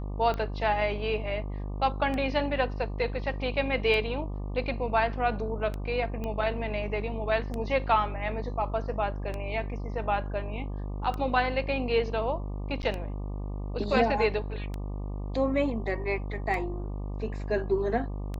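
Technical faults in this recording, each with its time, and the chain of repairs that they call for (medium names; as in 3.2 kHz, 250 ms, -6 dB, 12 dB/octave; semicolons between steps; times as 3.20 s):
buzz 50 Hz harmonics 24 -34 dBFS
tick 33 1/3 rpm -21 dBFS
6.24 s: pop -22 dBFS
12.82–12.83 s: dropout 9.9 ms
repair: de-click; de-hum 50 Hz, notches 24; interpolate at 12.82 s, 9.9 ms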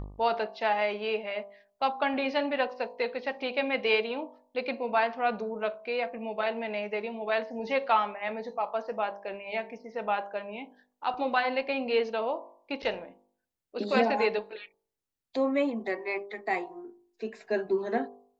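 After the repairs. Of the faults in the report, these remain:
6.24 s: pop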